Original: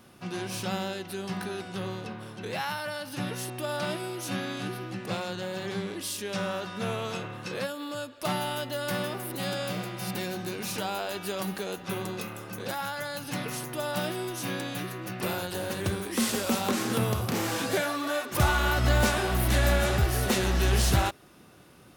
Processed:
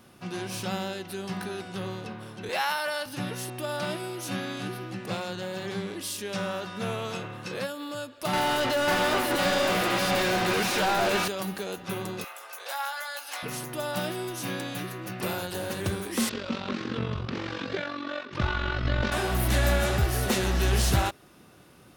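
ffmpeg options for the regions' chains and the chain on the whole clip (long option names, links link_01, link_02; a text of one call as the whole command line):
ffmpeg -i in.wav -filter_complex "[0:a]asettb=1/sr,asplit=3[link_01][link_02][link_03];[link_01]atrim=end=2.494[link_04];[link_02]atrim=start=2.49:end=3.06,asetpts=PTS-STARTPTS,afade=type=in:duration=0.004:curve=qsin,afade=type=out:start_time=0.566:duration=0.004:curve=qsin,highpass=430,acontrast=26[link_05];[link_03]atrim=start=3.056[link_06];[link_04][link_05]acrossfade=duration=0.004:curve1=hsin:curve2=qsin[link_07];[link_07][link_06]acrossfade=duration=0.004:curve1=qsin:curve2=hsin,asettb=1/sr,asplit=3[link_08][link_09][link_10];[link_08]atrim=end=8.334[link_11];[link_09]atrim=start=8.33:end=11.28,asetpts=PTS-STARTPTS,afade=type=in:duration=0.004:curve=qsin,afade=type=out:start_time=2.946:duration=0.004:curve=qsin,asplit=2[link_12][link_13];[link_13]highpass=frequency=720:poles=1,volume=33dB,asoftclip=type=tanh:threshold=-18.5dB[link_14];[link_12][link_14]amix=inputs=2:normalize=0,lowpass=frequency=2800:poles=1,volume=-6dB,aecho=1:1:545:0.596,atrim=end_sample=130095[link_15];[link_10]atrim=start=11.276[link_16];[link_11][link_15]acrossfade=duration=0.004:curve1=hsin:curve2=qsin[link_17];[link_17][link_16]acrossfade=duration=0.004:curve1=qsin:curve2=hsin,asettb=1/sr,asplit=3[link_18][link_19][link_20];[link_18]atrim=end=12.244[link_21];[link_19]atrim=start=12.24:end=13.43,asetpts=PTS-STARTPTS,afade=type=in:duration=0.004:curve=qsin,afade=type=out:start_time=1.186:duration=0.004:curve=qsin,highpass=frequency=650:width=0.5412,highpass=frequency=650:width=1.3066,asplit=2[link_22][link_23];[link_23]adelay=18,volume=-6dB[link_24];[link_22][link_24]amix=inputs=2:normalize=0,atrim=end_sample=52479[link_25];[link_20]atrim=start=13.426[link_26];[link_21][link_25]acrossfade=duration=0.004:curve1=hsin:curve2=qsin[link_27];[link_27][link_26]acrossfade=duration=0.004:curve1=qsin:curve2=hsin,asettb=1/sr,asplit=3[link_28][link_29][link_30];[link_28]atrim=end=16.294[link_31];[link_29]atrim=start=16.29:end=19.12,asetpts=PTS-STARTPTS,afade=type=in:duration=0.004:curve=qsin,afade=type=out:start_time=2.826:duration=0.004:curve=qsin,lowpass=frequency=4400:width=0.5412,lowpass=frequency=4400:width=1.3066,equalizer=frequency=750:width_type=o:width=0.48:gain=-8,tremolo=f=46:d=0.71[link_32];[link_30]atrim=start=19.116[link_33];[link_31][link_32]acrossfade=duration=0.004:curve1=hsin:curve2=qsin[link_34];[link_34][link_33]acrossfade=duration=0.004:curve1=qsin:curve2=hsin" out.wav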